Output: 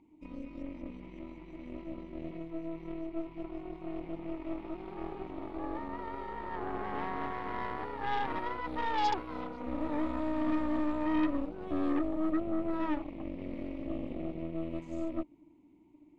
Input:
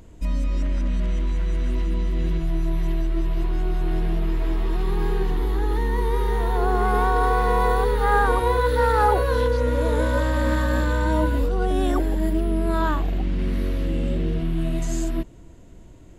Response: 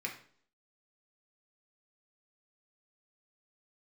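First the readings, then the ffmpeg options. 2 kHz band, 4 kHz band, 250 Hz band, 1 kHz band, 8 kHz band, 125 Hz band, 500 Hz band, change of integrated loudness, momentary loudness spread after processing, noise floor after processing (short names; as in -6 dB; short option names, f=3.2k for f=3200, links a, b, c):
-14.5 dB, -11.5 dB, -6.5 dB, -12.0 dB, under -20 dB, -23.5 dB, -15.0 dB, -13.0 dB, 12 LU, -60 dBFS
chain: -filter_complex "[0:a]asplit=3[a][b][c];[a]bandpass=f=300:t=q:w=8,volume=0dB[d];[b]bandpass=f=870:t=q:w=8,volume=-6dB[e];[c]bandpass=f=2.24k:t=q:w=8,volume=-9dB[f];[d][e][f]amix=inputs=3:normalize=0,aeval=exprs='0.106*(cos(1*acos(clip(val(0)/0.106,-1,1)))-cos(1*PI/2))+0.0168*(cos(8*acos(clip(val(0)/0.106,-1,1)))-cos(8*PI/2))':c=same,volume=-1.5dB"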